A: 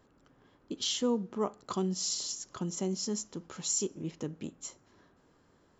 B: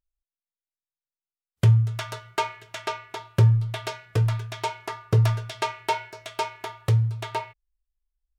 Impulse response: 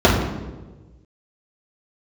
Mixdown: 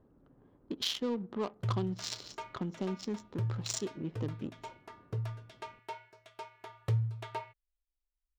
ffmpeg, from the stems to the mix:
-filter_complex "[0:a]adynamicsmooth=sensitivity=6:basefreq=650,equalizer=f=4.1k:t=o:w=1.6:g=8.5,acompressor=threshold=-39dB:ratio=2,volume=3dB[a];[1:a]highshelf=f=3.8k:g=-7,volume=-9.5dB,afade=t=in:st=6.51:d=0.36:silence=0.421697[b];[a][b]amix=inputs=2:normalize=0"

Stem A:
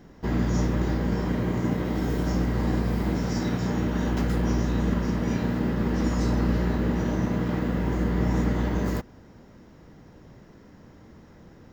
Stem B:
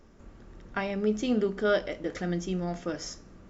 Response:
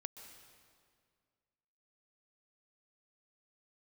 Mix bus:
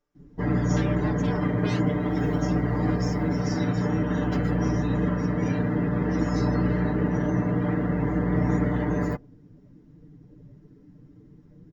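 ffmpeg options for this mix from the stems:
-filter_complex "[0:a]adelay=150,volume=-1dB[a];[1:a]aeval=exprs='0.0398*(abs(mod(val(0)/0.0398+3,4)-2)-1)':c=same,lowshelf=f=370:g=-8,volume=-4dB[b];[a][b]amix=inputs=2:normalize=0,afftdn=nr=18:nf=-44,aecho=1:1:6.8:0.92"

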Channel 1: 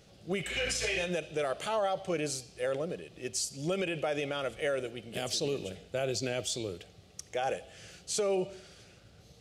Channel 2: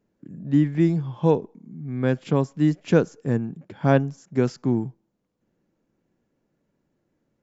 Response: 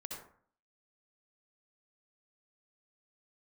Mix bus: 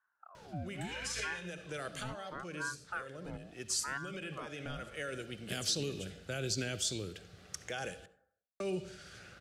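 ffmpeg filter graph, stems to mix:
-filter_complex "[0:a]adelay=350,volume=-0.5dB,asplit=3[a][b][c];[a]atrim=end=8.06,asetpts=PTS-STARTPTS,afade=t=out:st=8.056:d=0.004:c=hsin[d];[b]atrim=start=8.06:end=8.6,asetpts=PTS-STARTPTS,volume=0[e];[c]atrim=start=8.6,asetpts=PTS-STARTPTS,afade=t=in:d=0.004:c=hsin[f];[d][e][f]concat=n=3:v=0:a=1,asplit=2[g][h];[h]volume=-12dB[i];[1:a]lowpass=2.5k,aeval=exprs='val(0)*sin(2*PI*840*n/s+840*0.55/0.74*sin(2*PI*0.74*n/s))':c=same,volume=-17dB,asplit=2[j][k];[k]apad=whole_len=430292[l];[g][l]sidechaincompress=threshold=-47dB:ratio=5:attack=12:release=538[m];[2:a]atrim=start_sample=2205[n];[i][n]afir=irnorm=-1:irlink=0[o];[m][j][o]amix=inputs=3:normalize=0,acrossover=split=320|3000[p][q][r];[q]acompressor=threshold=-59dB:ratio=2[s];[p][s][r]amix=inputs=3:normalize=0,equalizer=f=1.5k:w=1.7:g=13.5"

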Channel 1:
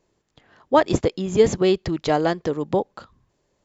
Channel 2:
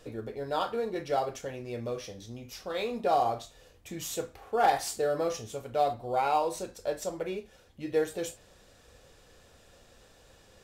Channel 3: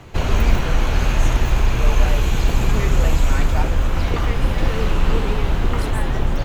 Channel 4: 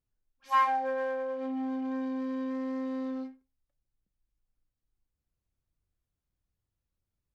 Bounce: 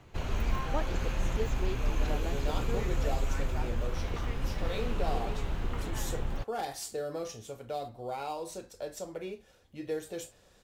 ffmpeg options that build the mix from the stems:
-filter_complex "[0:a]volume=-20dB[a];[1:a]acrossover=split=390|3000[b][c][d];[c]acompressor=threshold=-35dB:ratio=2.5[e];[b][e][d]amix=inputs=3:normalize=0,adelay=1950,volume=-4dB[f];[2:a]volume=-14.5dB[g];[3:a]volume=-17dB[h];[a][f][g][h]amix=inputs=4:normalize=0"

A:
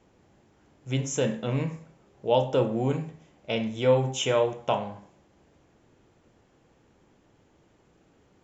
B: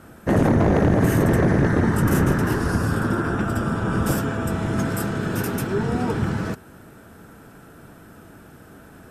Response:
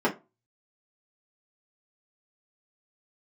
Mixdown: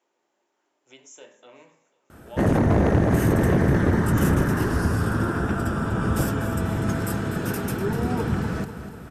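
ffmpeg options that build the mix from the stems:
-filter_complex "[0:a]highpass=560,highshelf=f=5.2k:g=6.5,acompressor=threshold=-47dB:ratio=1.5,volume=-11dB,asplit=3[a][b][c];[b]volume=-18dB[d];[c]volume=-20.5dB[e];[1:a]adelay=2100,volume=-2.5dB,asplit=2[f][g];[g]volume=-11.5dB[h];[2:a]atrim=start_sample=2205[i];[d][i]afir=irnorm=-1:irlink=0[j];[e][h]amix=inputs=2:normalize=0,aecho=0:1:246|492|738|984|1230|1476|1722|1968|2214:1|0.59|0.348|0.205|0.121|0.0715|0.0422|0.0249|0.0147[k];[a][f][j][k]amix=inputs=4:normalize=0,equalizer=f=65:t=o:w=0.88:g=5"

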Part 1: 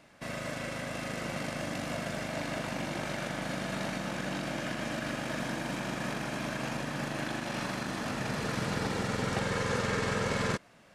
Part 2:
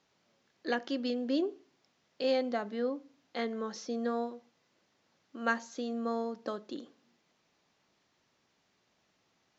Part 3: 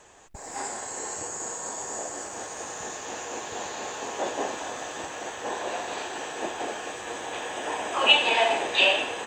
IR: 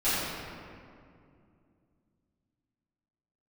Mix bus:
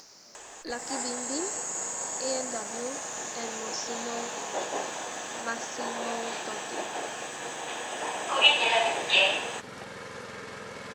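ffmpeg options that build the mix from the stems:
-filter_complex "[0:a]highpass=81,adelay=450,volume=-10dB[a];[1:a]highshelf=f=4.2k:t=q:w=3:g=7.5,volume=-2.5dB[b];[2:a]bass=f=250:g=-5,treble=f=4k:g=4,adelay=350,volume=-2dB[c];[a][b][c]amix=inputs=3:normalize=0,equalizer=f=120:w=0.65:g=-8,acompressor=mode=upward:threshold=-36dB:ratio=2.5"

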